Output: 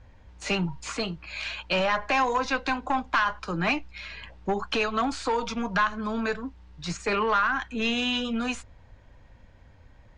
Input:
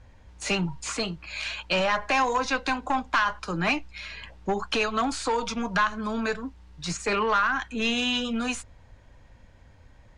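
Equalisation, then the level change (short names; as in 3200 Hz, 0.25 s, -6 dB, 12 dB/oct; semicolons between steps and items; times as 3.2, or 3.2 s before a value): air absorption 68 m; 0.0 dB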